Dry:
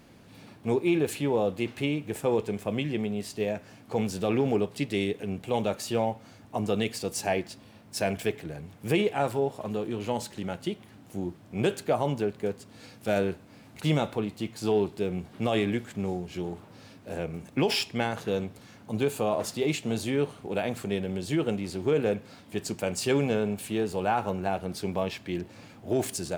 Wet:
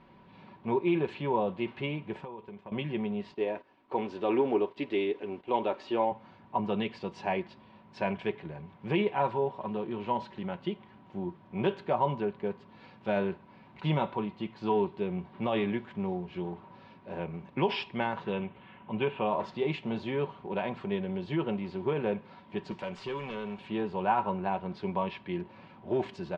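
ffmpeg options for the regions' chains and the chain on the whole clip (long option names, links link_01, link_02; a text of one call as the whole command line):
ffmpeg -i in.wav -filter_complex "[0:a]asettb=1/sr,asplit=3[link_01][link_02][link_03];[link_01]atrim=end=2.244[link_04];[link_02]atrim=start=2.24:end=2.72,asetpts=PTS-STARTPTS,afade=type=in:duration=0.004:curve=qsin,afade=type=out:start_time=0.476:duration=0.004:curve=qsin,agate=range=-11dB:threshold=-41dB:ratio=16:release=100:detection=peak,acompressor=threshold=-42dB:ratio=3:attack=3.2:release=140:knee=1:detection=peak[link_05];[link_03]atrim=start=2.716[link_06];[link_04][link_05]acrossfade=duration=0.004:curve1=hsin:curve2=qsin[link_07];[link_07][link_06]acrossfade=duration=0.004:curve1=qsin:curve2=hsin,asettb=1/sr,asplit=3[link_08][link_09][link_10];[link_08]atrim=end=3.344[link_11];[link_09]atrim=start=3.34:end=6.12,asetpts=PTS-STARTPTS,afade=type=in:duration=0.004:curve=qsin,afade=type=out:start_time=2.776:duration=0.004:curve=qsin,lowshelf=frequency=230:width_type=q:width=3:gain=-7,acrusher=bits=8:mix=0:aa=0.5,agate=range=-11dB:threshold=-45dB:ratio=16:release=100:detection=peak[link_12];[link_10]atrim=start=6.116[link_13];[link_11][link_12]acrossfade=duration=0.004:curve1=hsin:curve2=qsin[link_14];[link_14][link_13]acrossfade=duration=0.004:curve1=qsin:curve2=hsin,asettb=1/sr,asplit=3[link_15][link_16][link_17];[link_15]atrim=end=18.324[link_18];[link_16]atrim=start=18.32:end=19.27,asetpts=PTS-STARTPTS,afade=type=in:duration=0.004:curve=qsin,afade=type=out:start_time=0.946:duration=0.004:curve=qsin,lowpass=8600,highshelf=frequency=3900:width_type=q:width=3:gain=-10.5[link_19];[link_17]atrim=start=19.266[link_20];[link_18][link_19]acrossfade=duration=0.004:curve1=hsin:curve2=qsin[link_21];[link_21][link_20]acrossfade=duration=0.004:curve1=qsin:curve2=hsin,asettb=1/sr,asplit=3[link_22][link_23][link_24];[link_22]atrim=end=22.714[link_25];[link_23]atrim=start=22.71:end=23.58,asetpts=PTS-STARTPTS,afade=type=in:duration=0.004:curve=qsin,afade=type=out:start_time=0.866:duration=0.004:curve=qsin,aemphasis=mode=production:type=75kf,acrossover=split=730|5500[link_26][link_27][link_28];[link_26]acompressor=threshold=-32dB:ratio=4[link_29];[link_27]acompressor=threshold=-36dB:ratio=4[link_30];[link_28]acompressor=threshold=-27dB:ratio=4[link_31];[link_29][link_30][link_31]amix=inputs=3:normalize=0,asoftclip=type=hard:threshold=-28dB[link_32];[link_24]atrim=start=23.576[link_33];[link_25][link_32]acrossfade=duration=0.004:curve1=hsin:curve2=qsin[link_34];[link_34][link_33]acrossfade=duration=0.004:curve1=qsin:curve2=hsin,lowpass=frequency=3400:width=0.5412,lowpass=frequency=3400:width=1.3066,equalizer=frequency=980:width_type=o:width=0.22:gain=15,aecho=1:1:5.3:0.46,volume=-4.5dB" out.wav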